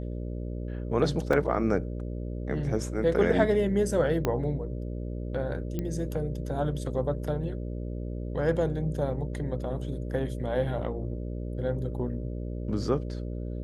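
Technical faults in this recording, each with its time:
mains buzz 60 Hz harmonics 10 −34 dBFS
0:01.33: drop-out 3.6 ms
0:04.25: click −13 dBFS
0:05.79: click −19 dBFS

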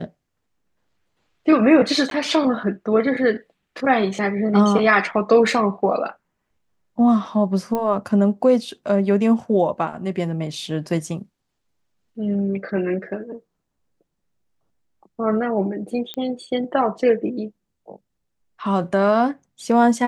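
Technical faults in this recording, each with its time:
0:02.10–0:02.11: drop-out 12 ms
0:07.75: click −12 dBFS
0:16.14: click −16 dBFS

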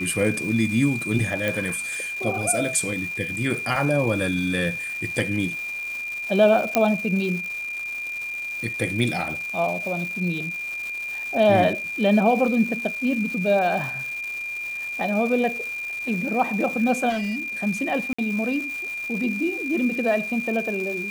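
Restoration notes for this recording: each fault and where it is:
surface crackle 560 per second −32 dBFS
whistle 2,400 Hz −28 dBFS
0:01.48: click
0:06.75: click −4 dBFS
0:17.09–0:17.53: clipping −23 dBFS
0:18.13–0:18.18: drop-out 55 ms

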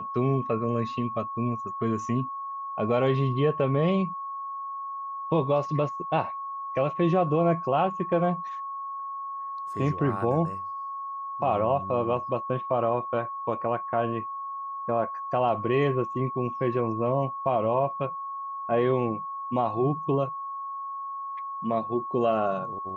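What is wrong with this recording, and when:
whistle 1,100 Hz −32 dBFS

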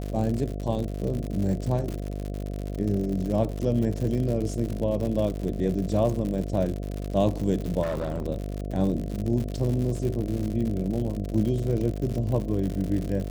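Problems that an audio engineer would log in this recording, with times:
mains buzz 50 Hz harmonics 14 −32 dBFS
surface crackle 100 per second −30 dBFS
0:07.82–0:08.24: clipping −24.5 dBFS

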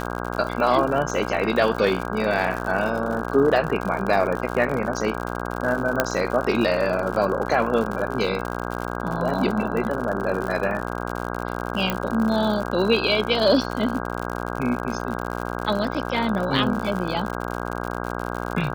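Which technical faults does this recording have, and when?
mains buzz 60 Hz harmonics 27 −29 dBFS
surface crackle 79 per second −27 dBFS
0:06.00: click −3 dBFS
0:11.90: click −8 dBFS

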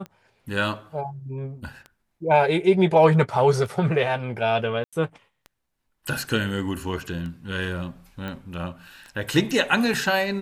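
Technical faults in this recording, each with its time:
scratch tick 33 1/3 rpm −25 dBFS
0:04.84–0:04.93: drop-out 86 ms
0:08.28: click −21 dBFS

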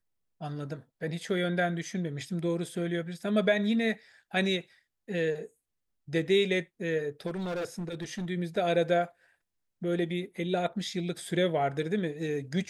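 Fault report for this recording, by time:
0:07.26–0:08.30: clipping −30.5 dBFS

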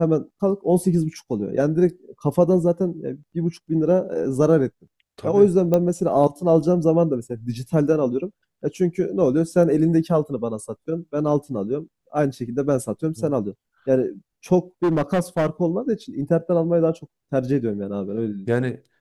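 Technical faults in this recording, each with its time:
0:05.74: click −9 dBFS
0:14.83–0:15.47: clipping −15.5 dBFS

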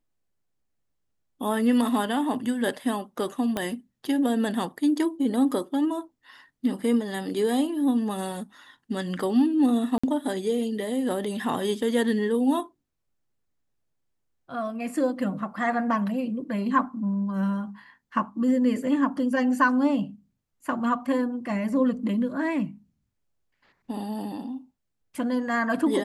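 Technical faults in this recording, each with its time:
0:03.57: click −13 dBFS
0:09.98–0:10.04: drop-out 55 ms

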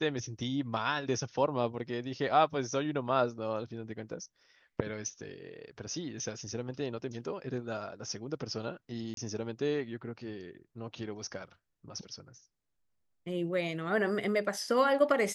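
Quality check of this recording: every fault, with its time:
0:09.14–0:09.17: drop-out 32 ms

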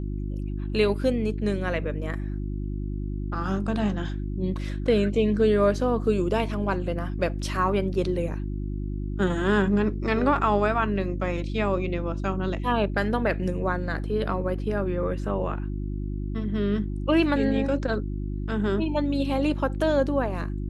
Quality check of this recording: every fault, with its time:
mains hum 50 Hz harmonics 7 −30 dBFS

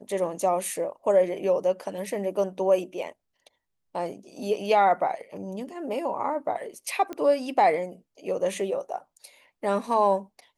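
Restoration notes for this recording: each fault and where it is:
0:07.13: click −21 dBFS

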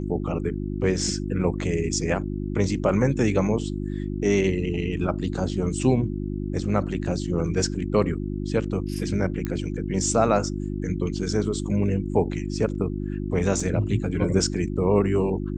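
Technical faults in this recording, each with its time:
mains hum 50 Hz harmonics 7 −29 dBFS
0:09.45: click −16 dBFS
0:13.60: drop-out 3.7 ms

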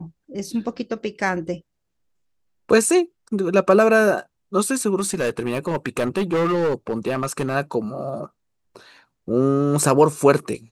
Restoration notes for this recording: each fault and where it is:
0:04.99–0:07.55: clipping −17 dBFS

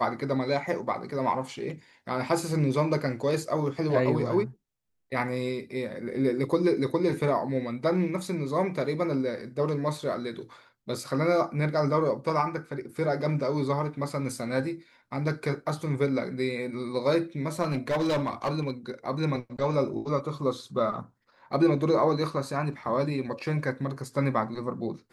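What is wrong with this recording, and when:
0:17.62–0:18.71: clipping −22.5 dBFS

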